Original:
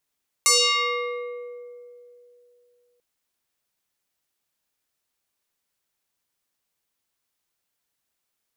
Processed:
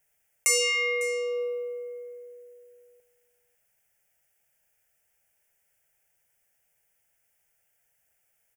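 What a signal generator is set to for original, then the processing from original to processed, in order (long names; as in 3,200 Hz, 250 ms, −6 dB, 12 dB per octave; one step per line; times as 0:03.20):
two-operator FM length 2.54 s, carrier 486 Hz, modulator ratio 3.39, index 5.8, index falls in 2.15 s exponential, decay 2.92 s, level −13.5 dB
phaser with its sweep stopped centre 1,100 Hz, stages 6
in parallel at −2 dB: compressor whose output falls as the input rises −38 dBFS, ratio −1
on the sum: single-tap delay 551 ms −18 dB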